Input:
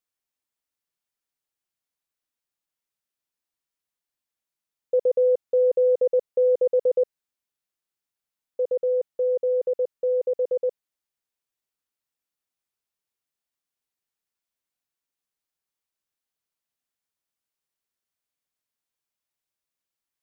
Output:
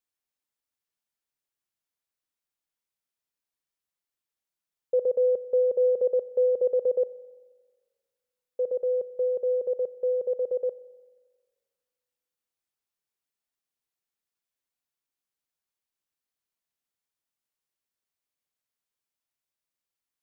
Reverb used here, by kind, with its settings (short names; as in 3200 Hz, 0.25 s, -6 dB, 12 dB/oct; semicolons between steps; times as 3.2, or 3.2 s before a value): spring tank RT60 1.6 s, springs 30/44 ms, chirp 55 ms, DRR 15.5 dB; gain -2.5 dB